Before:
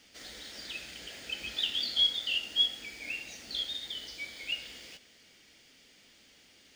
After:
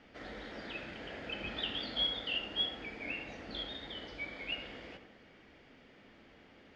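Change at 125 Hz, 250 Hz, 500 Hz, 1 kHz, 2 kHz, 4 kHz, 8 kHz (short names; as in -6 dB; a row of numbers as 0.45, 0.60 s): n/a, +8.0 dB, +8.0 dB, +7.5 dB, -2.0 dB, -7.0 dB, under -15 dB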